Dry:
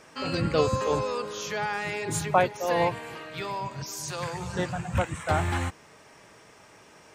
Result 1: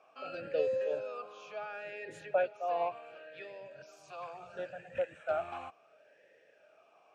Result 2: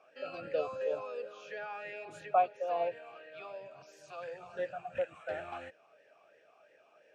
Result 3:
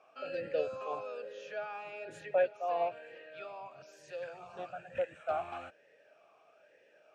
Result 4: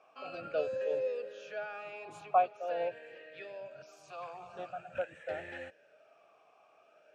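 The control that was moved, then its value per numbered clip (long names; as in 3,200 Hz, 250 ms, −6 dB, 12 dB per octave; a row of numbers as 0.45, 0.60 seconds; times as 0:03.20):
formant filter swept between two vowels, speed: 0.71, 2.9, 1.1, 0.46 Hertz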